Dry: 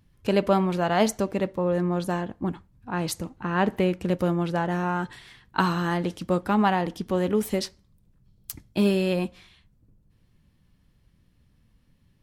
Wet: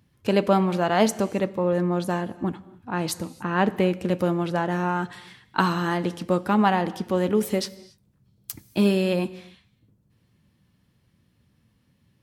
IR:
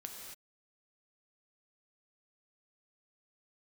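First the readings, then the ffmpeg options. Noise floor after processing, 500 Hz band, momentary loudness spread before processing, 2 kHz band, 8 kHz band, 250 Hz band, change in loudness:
-66 dBFS, +1.5 dB, 10 LU, +1.5 dB, +1.5 dB, +1.5 dB, +1.5 dB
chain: -filter_complex "[0:a]highpass=94,asplit=2[a][b];[1:a]atrim=start_sample=2205,adelay=9[c];[b][c]afir=irnorm=-1:irlink=0,volume=-12dB[d];[a][d]amix=inputs=2:normalize=0,volume=1.5dB"

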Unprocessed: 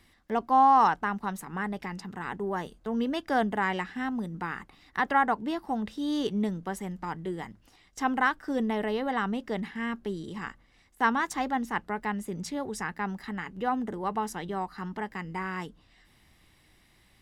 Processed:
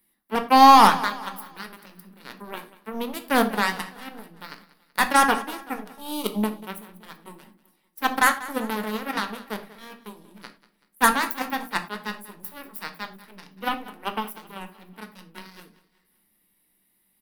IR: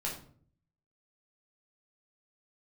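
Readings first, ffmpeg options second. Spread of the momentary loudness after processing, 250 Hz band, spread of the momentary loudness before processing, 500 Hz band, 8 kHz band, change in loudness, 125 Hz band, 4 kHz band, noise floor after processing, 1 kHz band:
21 LU, +1.5 dB, 11 LU, +2.0 dB, +12.0 dB, +8.0 dB, -3.0 dB, +12.0 dB, -69 dBFS, +6.0 dB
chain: -filter_complex "[0:a]aeval=exprs='0.266*(cos(1*acos(clip(val(0)/0.266,-1,1)))-cos(1*PI/2))+0.0106*(cos(6*acos(clip(val(0)/0.266,-1,1)))-cos(6*PI/2))+0.0422*(cos(7*acos(clip(val(0)/0.266,-1,1)))-cos(7*PI/2))':c=same,aexciter=amount=10.7:drive=6.4:freq=9.8k,lowshelf=f=150:t=q:w=3:g=-9,aecho=1:1:190|380|570|760:0.126|0.0592|0.0278|0.0131,asplit=2[a][b];[1:a]atrim=start_sample=2205,afade=t=out:st=0.16:d=0.01,atrim=end_sample=7497[c];[b][c]afir=irnorm=-1:irlink=0,volume=-5.5dB[d];[a][d]amix=inputs=2:normalize=0,volume=3.5dB"

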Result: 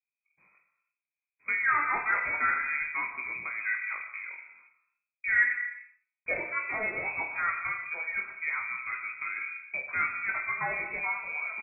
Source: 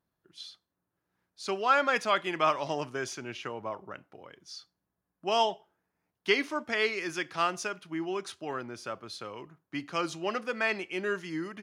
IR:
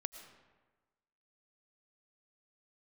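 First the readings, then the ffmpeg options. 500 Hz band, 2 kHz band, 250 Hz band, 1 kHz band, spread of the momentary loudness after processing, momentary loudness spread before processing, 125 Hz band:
-12.5 dB, +6.5 dB, -15.5 dB, -2.5 dB, 10 LU, 19 LU, n/a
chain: -filter_complex "[0:a]agate=range=-27dB:threshold=-55dB:ratio=16:detection=peak,lowshelf=f=390:g=7.5,bandreject=f=870:w=5.5,bandreject=f=122.1:t=h:w=4,bandreject=f=244.2:t=h:w=4,bandreject=f=366.3:t=h:w=4,bandreject=f=488.4:t=h:w=4,bandreject=f=610.5:t=h:w=4,bandreject=f=732.6:t=h:w=4,bandreject=f=854.7:t=h:w=4,bandreject=f=976.8:t=h:w=4,bandreject=f=1.0989k:t=h:w=4,bandreject=f=1.221k:t=h:w=4,bandreject=f=1.3431k:t=h:w=4,bandreject=f=1.4652k:t=h:w=4,bandreject=f=1.5873k:t=h:w=4,bandreject=f=1.7094k:t=h:w=4,acrossover=split=710|900[a][b][c];[a]acompressor=threshold=-44dB:ratio=6[d];[b]tremolo=f=1.3:d=0.84[e];[c]aphaser=in_gain=1:out_gain=1:delay=1.4:decay=0.37:speed=1:type=sinusoidal[f];[d][e][f]amix=inputs=3:normalize=0,asoftclip=type=tanh:threshold=-23.5dB,aecho=1:1:20|46|79.8|123.7|180.9:0.631|0.398|0.251|0.158|0.1,asplit=2[g][h];[1:a]atrim=start_sample=2205,afade=t=out:st=0.39:d=0.01,atrim=end_sample=17640,lowpass=1k[i];[h][i]afir=irnorm=-1:irlink=0,volume=9dB[j];[g][j]amix=inputs=2:normalize=0,lowpass=f=2.2k:t=q:w=0.5098,lowpass=f=2.2k:t=q:w=0.6013,lowpass=f=2.2k:t=q:w=0.9,lowpass=f=2.2k:t=q:w=2.563,afreqshift=-2600,volume=-1.5dB"

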